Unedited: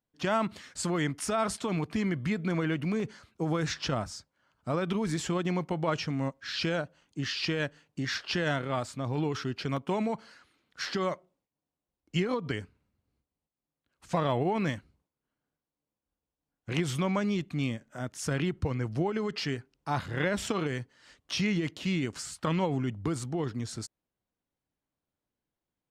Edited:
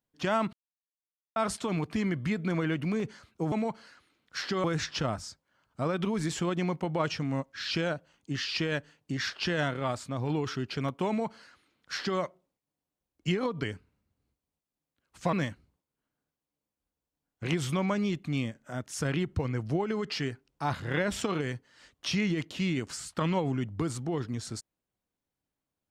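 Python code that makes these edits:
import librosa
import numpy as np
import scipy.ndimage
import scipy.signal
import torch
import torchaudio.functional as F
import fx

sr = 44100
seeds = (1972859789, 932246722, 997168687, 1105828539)

y = fx.edit(x, sr, fx.silence(start_s=0.53, length_s=0.83),
    fx.duplicate(start_s=9.96, length_s=1.12, to_s=3.52),
    fx.cut(start_s=14.21, length_s=0.38), tone=tone)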